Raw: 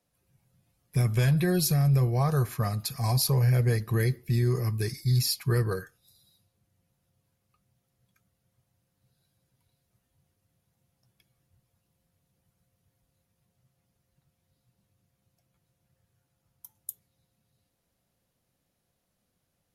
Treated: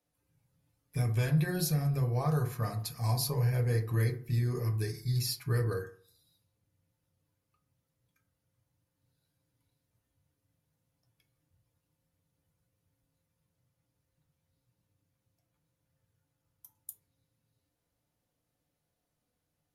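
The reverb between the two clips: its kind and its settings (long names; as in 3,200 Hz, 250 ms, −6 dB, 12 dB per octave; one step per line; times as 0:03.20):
feedback delay network reverb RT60 0.47 s, low-frequency decay 0.95×, high-frequency decay 0.35×, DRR 2.5 dB
level −7 dB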